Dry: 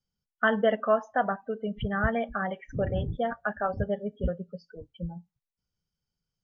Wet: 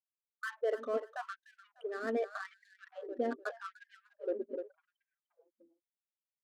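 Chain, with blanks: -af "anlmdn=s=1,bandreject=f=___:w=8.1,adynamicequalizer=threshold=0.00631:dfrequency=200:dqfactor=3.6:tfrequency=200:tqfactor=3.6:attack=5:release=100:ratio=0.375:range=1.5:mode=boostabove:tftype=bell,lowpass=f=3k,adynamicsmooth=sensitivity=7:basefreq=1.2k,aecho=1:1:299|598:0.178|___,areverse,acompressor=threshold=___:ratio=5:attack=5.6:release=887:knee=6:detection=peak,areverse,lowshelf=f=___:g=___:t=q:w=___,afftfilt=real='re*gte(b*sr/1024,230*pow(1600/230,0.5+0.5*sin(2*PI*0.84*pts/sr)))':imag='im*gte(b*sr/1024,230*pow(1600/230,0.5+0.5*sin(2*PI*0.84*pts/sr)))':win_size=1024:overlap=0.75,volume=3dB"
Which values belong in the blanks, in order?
840, 0.0373, -36dB, 520, 10, 1.5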